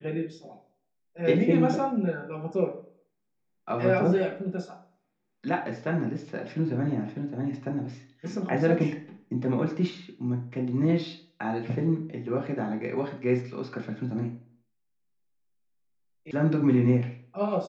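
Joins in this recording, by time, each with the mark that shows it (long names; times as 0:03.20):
0:16.31: cut off before it has died away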